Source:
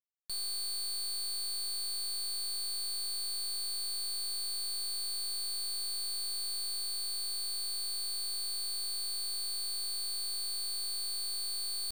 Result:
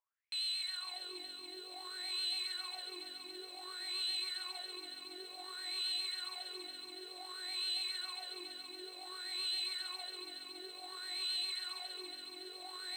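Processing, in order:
pitch vibrato 8 Hz 33 cents
LFO wah 0.6 Hz 290–3,100 Hz, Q 7.9
wrong playback speed 48 kHz file played as 44.1 kHz
feedback echo at a low word length 280 ms, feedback 80%, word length 14 bits, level −7.5 dB
level +17.5 dB

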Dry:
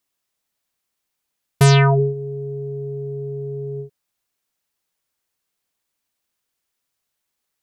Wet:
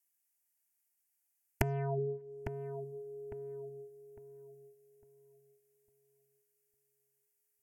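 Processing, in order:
noise gate −25 dBFS, range −13 dB
first-order pre-emphasis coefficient 0.8
treble cut that deepens with the level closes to 380 Hz, closed at −27 dBFS
dynamic equaliser 420 Hz, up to −6 dB, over −48 dBFS
downward compressor, threshold −32 dBFS, peak gain reduction 7.5 dB
phaser with its sweep stopped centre 770 Hz, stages 8
feedback echo with a low-pass in the loop 854 ms, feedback 31%, low-pass 1,500 Hz, level −9 dB
level +13 dB

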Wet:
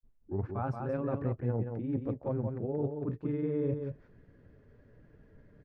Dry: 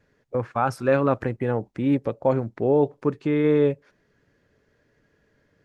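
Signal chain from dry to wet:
turntable start at the beginning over 0.47 s
low-pass filter 3,200 Hz 6 dB per octave
spectral tilt −3 dB per octave
reversed playback
downward compressor 8 to 1, threshold −30 dBFS, peak gain reduction 18.5 dB
reversed playback
granular cloud 100 ms, grains 20 per second, spray 10 ms, pitch spread up and down by 0 semitones
on a send: single-tap delay 178 ms −5.5 dB

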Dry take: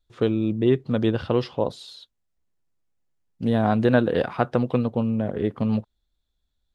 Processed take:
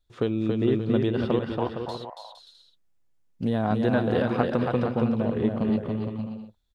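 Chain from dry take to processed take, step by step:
0:01.39–0:01.89: elliptic band-pass filter 690–1,900 Hz
downward compressor 2 to 1, threshold −24 dBFS, peak gain reduction 6.5 dB
bouncing-ball delay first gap 280 ms, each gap 0.65×, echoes 5

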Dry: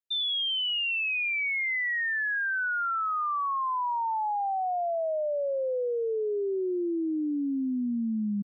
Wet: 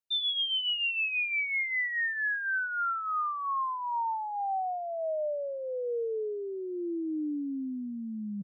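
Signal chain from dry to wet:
reverb reduction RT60 1.6 s
comb filter 6.5 ms, depth 39%
reversed playback
upward compression, threshold −31 dBFS
reversed playback
level −1.5 dB

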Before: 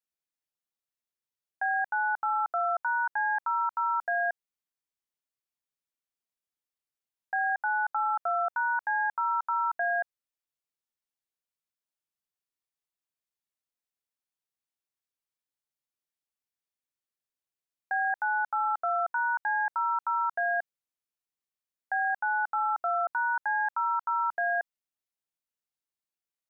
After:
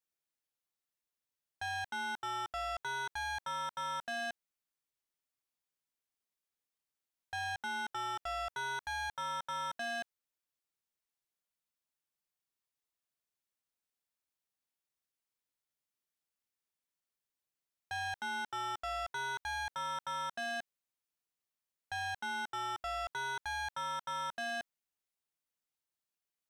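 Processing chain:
soft clipping −36 dBFS, distortion −7 dB

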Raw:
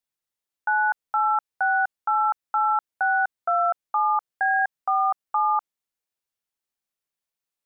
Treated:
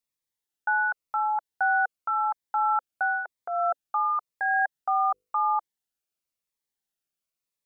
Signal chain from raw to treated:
0:05.09–0:05.56: mains-hum notches 50/100/150/200/250/300/350/400/450/500 Hz
phaser whose notches keep moving one way falling 0.94 Hz

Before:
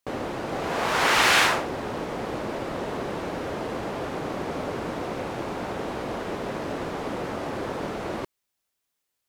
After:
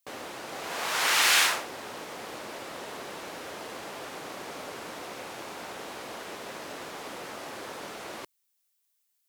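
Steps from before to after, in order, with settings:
spectral tilt +3.5 dB per octave
level −7 dB

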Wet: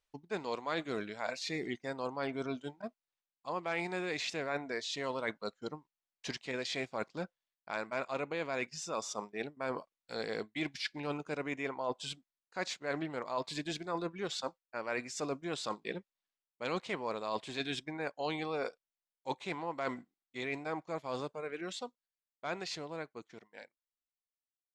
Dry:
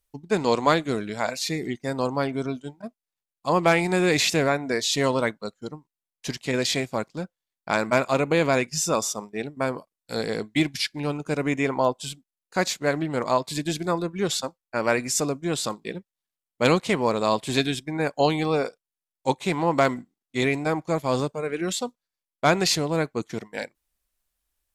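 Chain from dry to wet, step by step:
fade-out on the ending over 7.97 s
low-shelf EQ 300 Hz −12 dB
reversed playback
downward compressor 6 to 1, threshold −33 dBFS, peak gain reduction 16.5 dB
reversed playback
high-frequency loss of the air 100 metres

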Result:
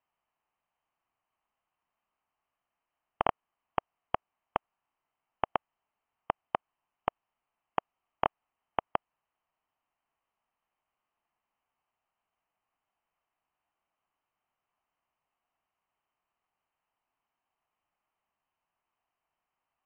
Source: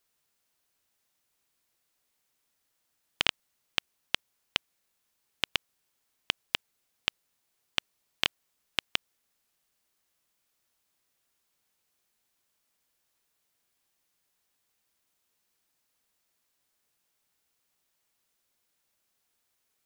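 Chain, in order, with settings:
formants moved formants −3 semitones
voice inversion scrambler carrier 3,100 Hz
flat-topped bell 900 Hz +9.5 dB 1.1 octaves
level −6 dB

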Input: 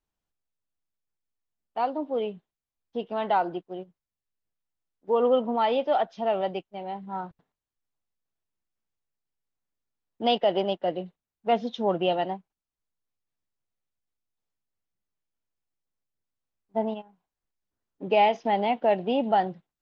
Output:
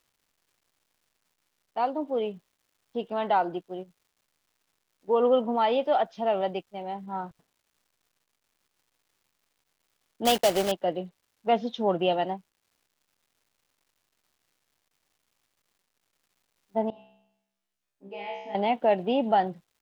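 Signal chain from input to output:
0:10.25–0:10.73: one scale factor per block 3 bits
surface crackle 440 per second −59 dBFS
0:16.90–0:18.55: tuned comb filter 66 Hz, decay 0.84 s, harmonics all, mix 100%

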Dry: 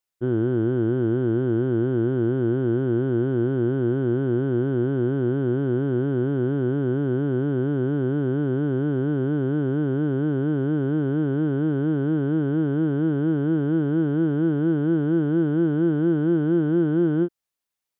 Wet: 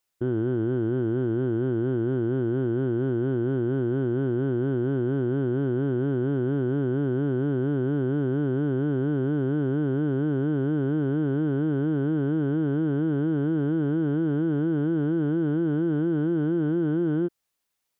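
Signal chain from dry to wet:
brickwall limiter −23 dBFS, peak gain reduction 11 dB
level +5.5 dB

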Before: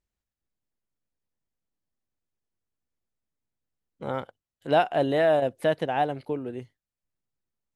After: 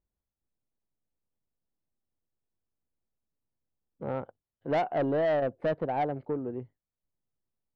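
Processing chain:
low-pass filter 1,000 Hz 12 dB per octave
soft clipping −22.5 dBFS, distortion −12 dB

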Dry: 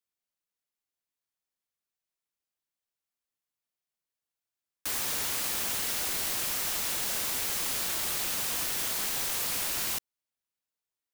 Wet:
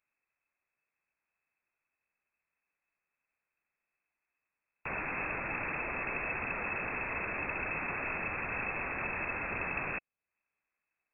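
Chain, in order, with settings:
low-shelf EQ 90 Hz +11 dB
voice inversion scrambler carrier 2,600 Hz
one half of a high-frequency compander encoder only
level +2.5 dB

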